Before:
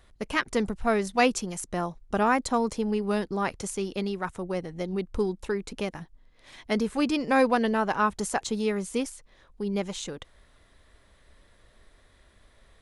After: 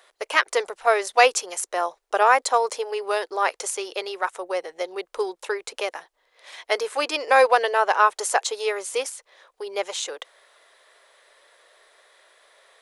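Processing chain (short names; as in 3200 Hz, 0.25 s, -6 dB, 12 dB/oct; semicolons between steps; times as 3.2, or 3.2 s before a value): inverse Chebyshev high-pass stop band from 230 Hz, stop band 40 dB; gain +7.5 dB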